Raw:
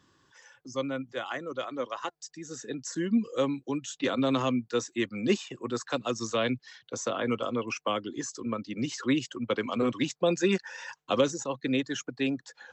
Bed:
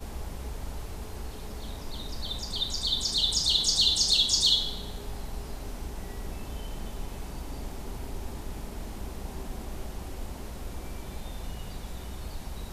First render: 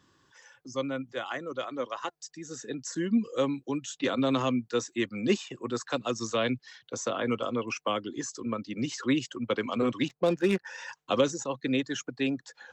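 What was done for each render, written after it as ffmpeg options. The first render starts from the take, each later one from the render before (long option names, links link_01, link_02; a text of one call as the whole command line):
ffmpeg -i in.wav -filter_complex "[0:a]asettb=1/sr,asplit=3[link_01][link_02][link_03];[link_01]atrim=end=10.084[link_04];[link_02]atrim=start=10.08:end=10.65,asetpts=PTS-STARTPTS,afade=type=in:duration=0.004:curve=qsin,afade=type=out:start_time=0.566:duration=0.004:curve=qsin,adynamicsmooth=sensitivity=3.5:basefreq=1000[link_05];[link_03]atrim=start=10.646[link_06];[link_04][link_05]acrossfade=duration=0.004:curve1=hsin:curve2=qsin[link_07];[link_07][link_06]acrossfade=duration=0.004:curve1=qsin:curve2=hsin" out.wav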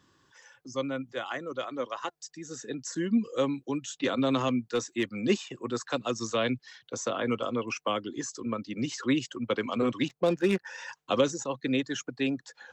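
ffmpeg -i in.wav -filter_complex "[0:a]asettb=1/sr,asplit=3[link_01][link_02][link_03];[link_01]atrim=end=4.484[link_04];[link_02]atrim=start=4.48:end=5.13,asetpts=PTS-STARTPTS,afade=type=in:duration=0.004:curve=qsin,afade=type=out:start_time=0.646:duration=0.004:curve=qsin,asoftclip=type=hard:threshold=-20dB[link_05];[link_03]atrim=start=5.126[link_06];[link_04][link_05]acrossfade=duration=0.004:curve1=hsin:curve2=qsin[link_07];[link_07][link_06]acrossfade=duration=0.004:curve1=qsin:curve2=hsin" out.wav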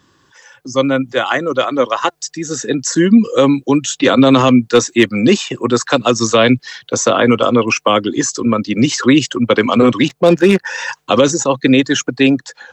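ffmpeg -i in.wav -af "dynaudnorm=framelen=440:gausssize=3:maxgain=8.5dB,alimiter=level_in=10.5dB:limit=-1dB:release=50:level=0:latency=1" out.wav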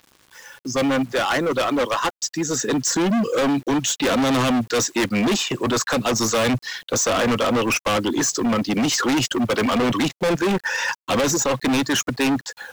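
ffmpeg -i in.wav -af "acrusher=bits=7:mix=0:aa=0.000001,volume=17.5dB,asoftclip=hard,volume=-17.5dB" out.wav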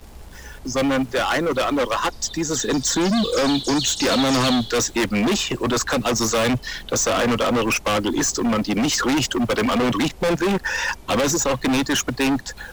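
ffmpeg -i in.wav -i bed.wav -filter_complex "[1:a]volume=-4dB[link_01];[0:a][link_01]amix=inputs=2:normalize=0" out.wav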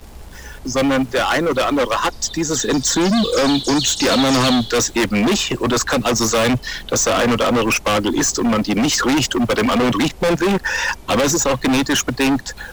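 ffmpeg -i in.wav -af "volume=3.5dB" out.wav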